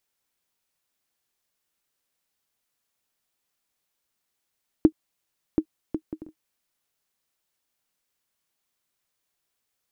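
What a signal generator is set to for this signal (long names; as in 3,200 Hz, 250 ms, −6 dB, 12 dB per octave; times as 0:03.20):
bouncing ball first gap 0.73 s, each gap 0.5, 314 Hz, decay 73 ms −4.5 dBFS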